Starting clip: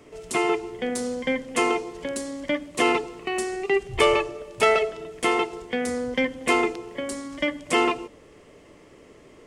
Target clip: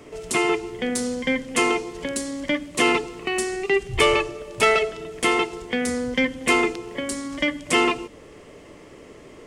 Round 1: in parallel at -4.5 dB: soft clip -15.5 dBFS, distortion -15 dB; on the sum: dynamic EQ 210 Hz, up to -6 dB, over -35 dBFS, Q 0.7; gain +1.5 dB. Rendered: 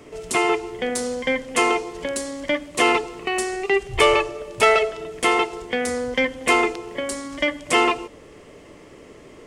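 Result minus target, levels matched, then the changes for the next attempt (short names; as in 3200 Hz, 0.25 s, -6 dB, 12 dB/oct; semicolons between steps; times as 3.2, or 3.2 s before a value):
250 Hz band -3.0 dB
change: dynamic EQ 660 Hz, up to -6 dB, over -35 dBFS, Q 0.7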